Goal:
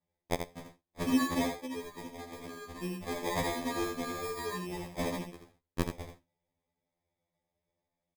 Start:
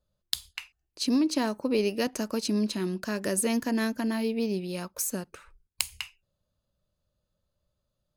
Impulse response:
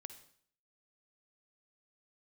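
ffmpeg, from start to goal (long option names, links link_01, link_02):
-filter_complex "[0:a]highpass=frequency=290:poles=1,asettb=1/sr,asplit=3[link_01][link_02][link_03];[link_01]atrim=end=1.474[link_04];[link_02]atrim=start=1.47:end=2.83,asetpts=PTS-STARTPTS,afade=type=in:duration=0.004:curve=qsin,afade=type=out:start_time=1.356:duration=0.004:curve=qsin,acompressor=threshold=-38dB:ratio=6[link_05];[link_03]atrim=start=2.826[link_06];[link_04][link_05]acrossfade=duration=0.004:curve1=hsin:curve2=qsin[link_07];[link_07][link_06]acrossfade=duration=0.004:curve1=qsin:curve2=hsin,acrusher=samples=31:mix=1:aa=0.000001,asplit=2[link_08][link_09];[link_09]aecho=0:1:81:0.447[link_10];[link_08][link_10]amix=inputs=2:normalize=0,afftfilt=real='re*2*eq(mod(b,4),0)':imag='im*2*eq(mod(b,4),0)':win_size=2048:overlap=0.75"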